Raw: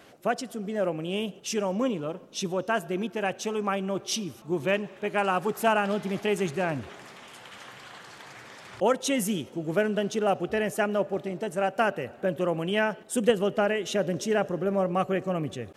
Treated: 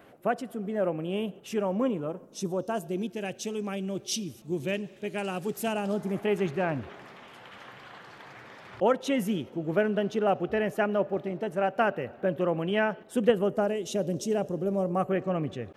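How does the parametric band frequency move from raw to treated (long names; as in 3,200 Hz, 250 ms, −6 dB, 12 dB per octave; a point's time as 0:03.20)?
parametric band −14 dB 1.7 octaves
0:01.82 5,700 Hz
0:03.21 1,100 Hz
0:05.70 1,100 Hz
0:06.38 8,300 Hz
0:13.27 8,300 Hz
0:13.74 1,700 Hz
0:14.83 1,700 Hz
0:15.23 9,800 Hz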